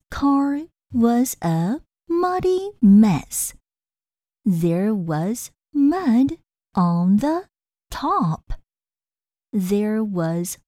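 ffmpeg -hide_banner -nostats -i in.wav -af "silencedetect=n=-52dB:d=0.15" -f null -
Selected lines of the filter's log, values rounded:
silence_start: 0.68
silence_end: 0.91 | silence_duration: 0.23
silence_start: 1.82
silence_end: 2.08 | silence_duration: 0.26
silence_start: 3.58
silence_end: 4.45 | silence_duration: 0.87
silence_start: 5.52
silence_end: 5.73 | silence_duration: 0.21
silence_start: 6.40
silence_end: 6.75 | silence_duration: 0.35
silence_start: 7.46
silence_end: 7.91 | silence_duration: 0.45
silence_start: 8.61
silence_end: 9.53 | silence_duration: 0.93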